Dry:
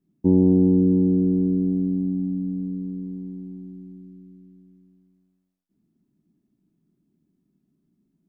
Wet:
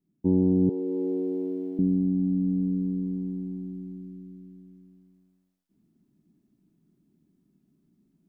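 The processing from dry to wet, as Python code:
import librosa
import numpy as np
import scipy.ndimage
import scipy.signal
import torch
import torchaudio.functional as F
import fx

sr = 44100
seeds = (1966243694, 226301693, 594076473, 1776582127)

y = fx.highpass(x, sr, hz=380.0, slope=24, at=(0.69, 1.79))
y = fx.rider(y, sr, range_db=4, speed_s=0.5)
y = F.gain(torch.from_numpy(y), -1.5).numpy()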